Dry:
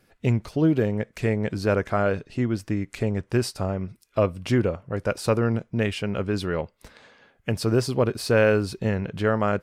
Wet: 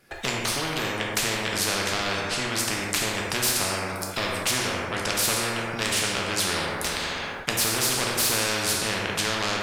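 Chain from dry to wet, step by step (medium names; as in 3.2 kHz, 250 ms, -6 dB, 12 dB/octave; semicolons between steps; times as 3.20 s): gate with hold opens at -47 dBFS; bass shelf 350 Hz -7 dB; in parallel at +2 dB: compression, threshold -35 dBFS, peak gain reduction 16.5 dB; on the sum: saturation -18 dBFS, distortion -14 dB; plate-style reverb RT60 1.1 s, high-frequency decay 0.6×, pre-delay 0 ms, DRR -1 dB; spectrum-flattening compressor 4:1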